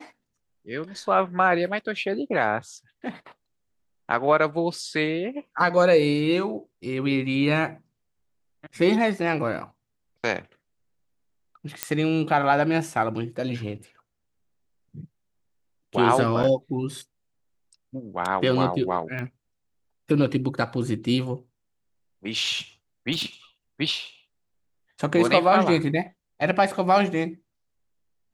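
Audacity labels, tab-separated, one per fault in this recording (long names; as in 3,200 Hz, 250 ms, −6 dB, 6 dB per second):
11.830000	11.830000	click −5 dBFS
16.430000	16.440000	drop-out 6.8 ms
19.190000	19.190000	click −21 dBFS
23.120000	23.260000	clipping −22.5 dBFS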